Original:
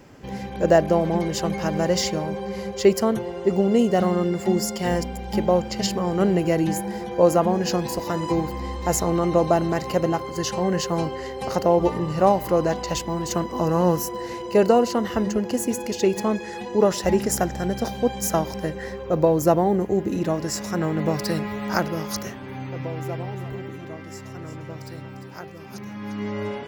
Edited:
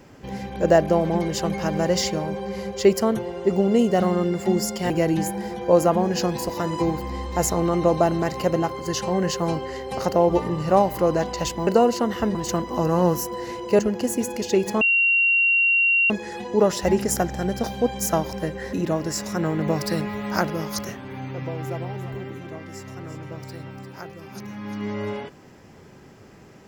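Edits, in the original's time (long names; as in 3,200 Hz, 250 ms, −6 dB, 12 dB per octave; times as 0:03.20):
0:04.90–0:06.40: remove
0:14.61–0:15.29: move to 0:13.17
0:16.31: insert tone 2,750 Hz −15.5 dBFS 1.29 s
0:18.94–0:20.11: remove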